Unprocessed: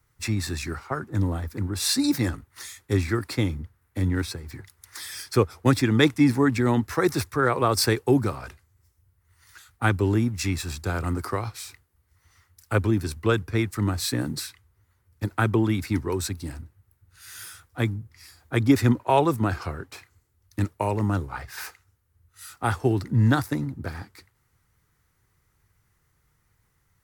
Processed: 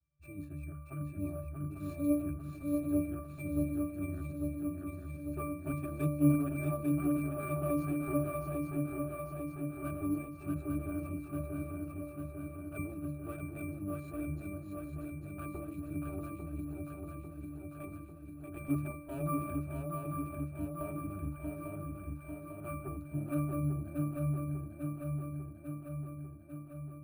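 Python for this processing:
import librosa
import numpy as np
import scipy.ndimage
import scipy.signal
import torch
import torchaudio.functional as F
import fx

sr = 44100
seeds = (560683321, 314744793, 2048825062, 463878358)

y = fx.ripple_eq(x, sr, per_octave=1.5, db=9)
y = fx.cheby_harmonics(y, sr, harmonics=(8,), levels_db=(-14,), full_scale_db=-4.5)
y = fx.octave_resonator(y, sr, note='D', decay_s=0.5)
y = fx.echo_swing(y, sr, ms=847, ratio=3, feedback_pct=65, wet_db=-3.5)
y = np.repeat(y[::4], 4)[:len(y)]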